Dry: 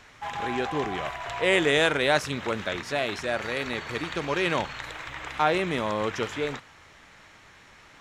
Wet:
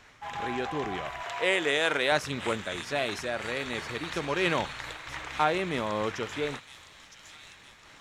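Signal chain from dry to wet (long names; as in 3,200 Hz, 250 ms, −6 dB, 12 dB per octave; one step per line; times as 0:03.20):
0:01.23–0:02.12: high-pass filter 400 Hz 6 dB per octave
on a send: delay with a high-pass on its return 963 ms, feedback 52%, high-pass 4,400 Hz, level −5 dB
on the sum: amplitude modulation by smooth noise, depth 50%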